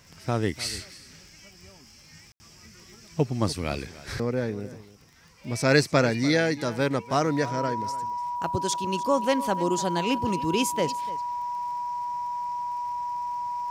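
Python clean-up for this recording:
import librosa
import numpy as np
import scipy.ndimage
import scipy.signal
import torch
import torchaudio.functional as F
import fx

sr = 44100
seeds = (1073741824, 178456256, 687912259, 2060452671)

y = fx.fix_declick_ar(x, sr, threshold=6.5)
y = fx.notch(y, sr, hz=970.0, q=30.0)
y = fx.fix_ambience(y, sr, seeds[0], print_start_s=4.94, print_end_s=5.44, start_s=2.32, end_s=2.4)
y = fx.fix_echo_inverse(y, sr, delay_ms=295, level_db=-17.5)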